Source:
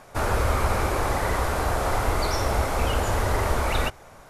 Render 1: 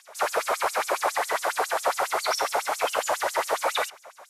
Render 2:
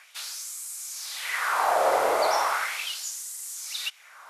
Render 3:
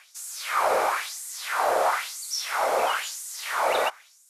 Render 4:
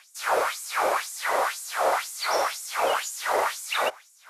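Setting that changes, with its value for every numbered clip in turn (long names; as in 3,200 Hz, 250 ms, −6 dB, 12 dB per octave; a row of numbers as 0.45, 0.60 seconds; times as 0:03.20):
auto-filter high-pass, speed: 7.3, 0.37, 1, 2 Hertz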